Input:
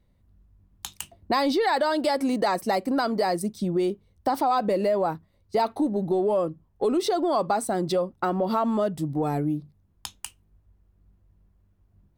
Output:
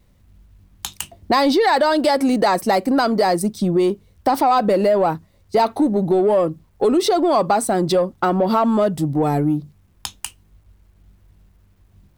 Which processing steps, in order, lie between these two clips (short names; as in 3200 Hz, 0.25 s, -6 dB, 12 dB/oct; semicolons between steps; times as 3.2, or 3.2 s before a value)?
in parallel at -7 dB: soft clip -26 dBFS, distortion -10 dB; on the sum: requantised 12-bit, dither none; gain +5.5 dB